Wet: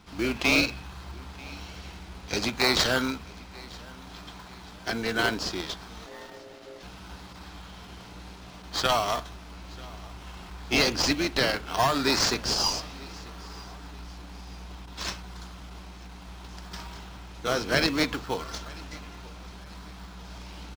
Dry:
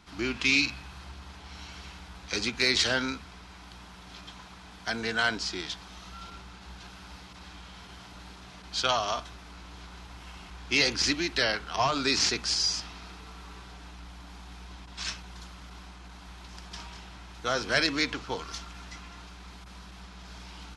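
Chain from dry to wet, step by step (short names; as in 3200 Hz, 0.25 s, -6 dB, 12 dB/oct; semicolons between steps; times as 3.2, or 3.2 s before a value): in parallel at -5 dB: decimation with a swept rate 19×, swing 60% 0.64 Hz; on the sum: feedback echo 0.938 s, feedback 42%, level -23 dB; 6.06–6.83 ring modulator 470 Hz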